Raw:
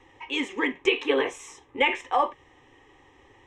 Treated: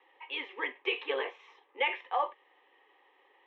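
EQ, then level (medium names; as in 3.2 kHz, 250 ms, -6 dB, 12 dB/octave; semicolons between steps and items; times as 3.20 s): high-pass 440 Hz 24 dB/octave; steep low-pass 3.9 kHz 36 dB/octave; -7.0 dB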